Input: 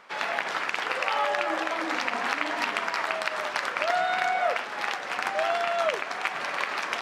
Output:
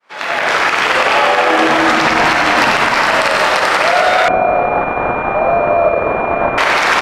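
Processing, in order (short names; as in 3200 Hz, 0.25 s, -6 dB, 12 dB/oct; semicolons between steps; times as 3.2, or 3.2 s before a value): opening faded in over 0.91 s; compressor, threshold -30 dBFS, peak gain reduction 9.5 dB; frequency-shifting echo 93 ms, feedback 47%, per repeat -87 Hz, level -4.5 dB; Schroeder reverb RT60 3.2 s, combs from 25 ms, DRR 2 dB; maximiser +21.5 dB; 4.28–6.58 pulse-width modulation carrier 2400 Hz; gain -1 dB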